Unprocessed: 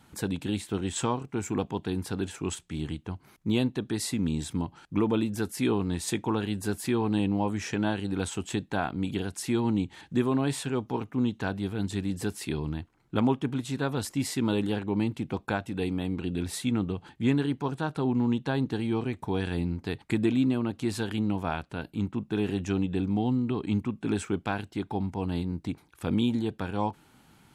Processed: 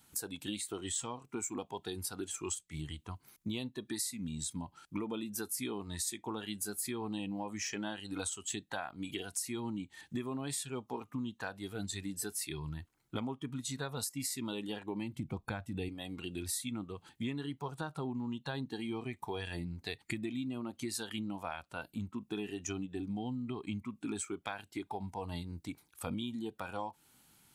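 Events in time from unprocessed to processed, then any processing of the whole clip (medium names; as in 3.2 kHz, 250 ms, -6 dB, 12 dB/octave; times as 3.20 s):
15.13–15.89 s: bass shelf 220 Hz +9.5 dB
whole clip: pre-emphasis filter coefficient 0.8; spectral noise reduction 11 dB; compression 6:1, threshold -49 dBFS; trim +13 dB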